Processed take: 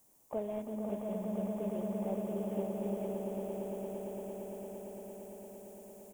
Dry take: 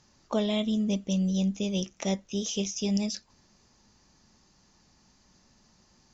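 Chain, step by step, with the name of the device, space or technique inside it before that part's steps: army field radio (BPF 330–2800 Hz; CVSD 16 kbps; white noise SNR 21 dB); band shelf 2400 Hz -14.5 dB 2.4 oct; swelling echo 0.114 s, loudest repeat 8, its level -8 dB; echo 0.518 s -6.5 dB; gain -6 dB

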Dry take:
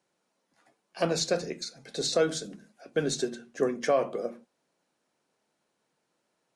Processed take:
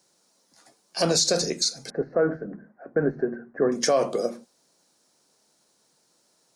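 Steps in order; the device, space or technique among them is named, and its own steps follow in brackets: over-bright horn tweeter (resonant high shelf 3600 Hz +9 dB, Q 1.5; limiter -18.5 dBFS, peak gain reduction 10.5 dB); 1.9–3.72 elliptic low-pass 1800 Hz, stop band 50 dB; gain +7 dB

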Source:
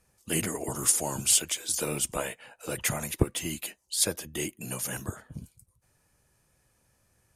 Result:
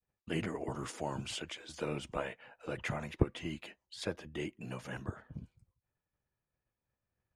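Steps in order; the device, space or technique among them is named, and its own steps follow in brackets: hearing-loss simulation (LPF 2600 Hz 12 dB/oct; expander -60 dBFS); gain -4.5 dB

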